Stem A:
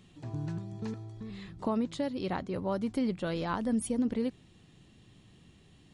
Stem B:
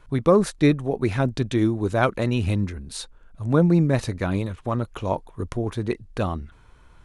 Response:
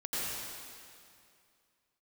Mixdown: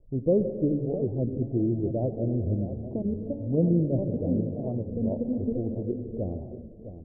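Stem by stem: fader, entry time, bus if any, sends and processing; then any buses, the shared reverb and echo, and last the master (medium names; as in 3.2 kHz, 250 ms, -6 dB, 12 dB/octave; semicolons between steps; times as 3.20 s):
+1.5 dB, 1.30 s, send -10.5 dB, echo send -6.5 dB, level held to a coarse grid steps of 15 dB
-6.5 dB, 0.00 s, send -13 dB, echo send -10.5 dB, none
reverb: on, RT60 2.4 s, pre-delay 80 ms
echo: feedback delay 658 ms, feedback 26%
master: steep low-pass 630 Hz 48 dB/octave; de-hum 144.8 Hz, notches 3; warped record 33 1/3 rpm, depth 160 cents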